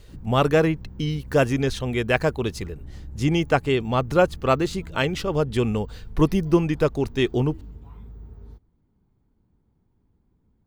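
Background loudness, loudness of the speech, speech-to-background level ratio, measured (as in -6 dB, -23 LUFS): -43.0 LUFS, -23.0 LUFS, 20.0 dB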